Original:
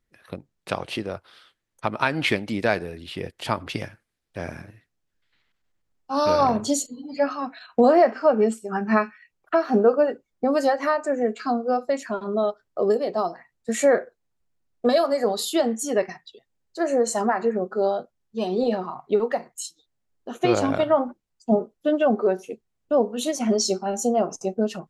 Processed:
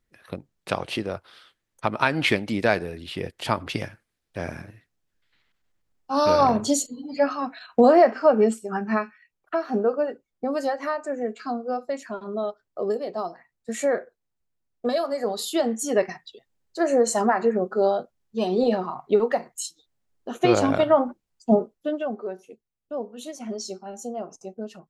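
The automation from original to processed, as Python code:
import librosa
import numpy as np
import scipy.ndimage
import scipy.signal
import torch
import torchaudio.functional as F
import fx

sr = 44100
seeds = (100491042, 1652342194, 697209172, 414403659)

y = fx.gain(x, sr, db=fx.line((8.6, 1.0), (9.02, -5.0), (15.09, -5.0), (16.06, 1.5), (21.59, 1.5), (22.16, -11.0)))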